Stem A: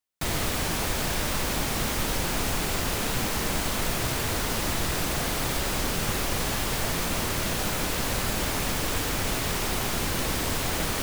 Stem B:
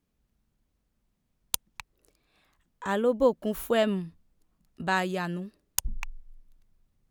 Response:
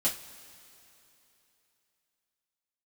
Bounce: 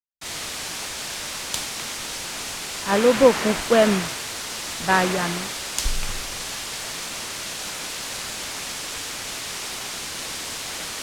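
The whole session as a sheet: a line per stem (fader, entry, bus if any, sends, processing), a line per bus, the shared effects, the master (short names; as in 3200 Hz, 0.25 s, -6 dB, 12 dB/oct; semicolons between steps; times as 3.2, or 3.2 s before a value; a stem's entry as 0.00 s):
-4.0 dB, 0.00 s, no send, tilt +3 dB/oct
-1.0 dB, 0.00 s, no send, dry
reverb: off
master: LPF 7600 Hz 12 dB/oct; three-band expander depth 100%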